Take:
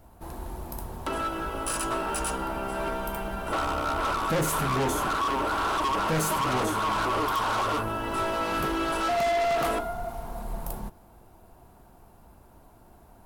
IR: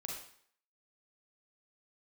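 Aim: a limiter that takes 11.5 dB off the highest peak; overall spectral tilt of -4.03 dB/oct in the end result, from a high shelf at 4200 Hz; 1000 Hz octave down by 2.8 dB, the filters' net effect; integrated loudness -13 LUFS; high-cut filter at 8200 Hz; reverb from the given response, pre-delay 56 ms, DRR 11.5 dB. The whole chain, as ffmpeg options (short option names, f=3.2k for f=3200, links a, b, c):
-filter_complex "[0:a]lowpass=8.2k,equalizer=f=1k:t=o:g=-4,highshelf=f=4.2k:g=4.5,alimiter=level_in=7.5dB:limit=-24dB:level=0:latency=1,volume=-7.5dB,asplit=2[a][b];[1:a]atrim=start_sample=2205,adelay=56[c];[b][c]afir=irnorm=-1:irlink=0,volume=-10.5dB[d];[a][d]amix=inputs=2:normalize=0,volume=25dB"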